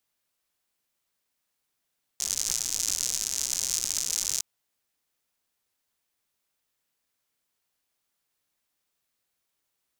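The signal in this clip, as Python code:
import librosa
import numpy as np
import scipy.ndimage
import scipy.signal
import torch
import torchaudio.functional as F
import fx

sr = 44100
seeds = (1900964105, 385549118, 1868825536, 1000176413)

y = fx.rain(sr, seeds[0], length_s=2.21, drops_per_s=130.0, hz=6400.0, bed_db=-19)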